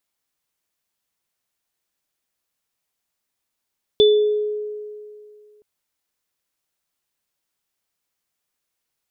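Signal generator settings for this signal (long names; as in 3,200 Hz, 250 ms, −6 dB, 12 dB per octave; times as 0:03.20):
inharmonic partials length 1.62 s, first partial 421 Hz, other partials 3,490 Hz, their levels −6 dB, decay 2.32 s, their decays 0.52 s, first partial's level −9 dB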